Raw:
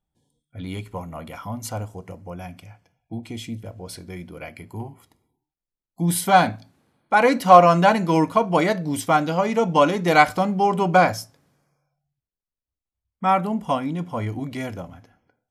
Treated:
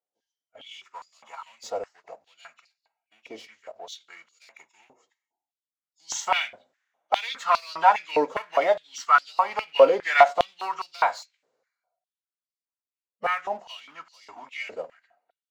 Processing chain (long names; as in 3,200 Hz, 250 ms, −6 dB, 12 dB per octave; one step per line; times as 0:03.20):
hearing-aid frequency compression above 2,600 Hz 1.5 to 1
leveller curve on the samples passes 1
phase-vocoder pitch shift with formants kept −1 semitone
high-pass on a step sequencer 4.9 Hz 490–4,600 Hz
level −9 dB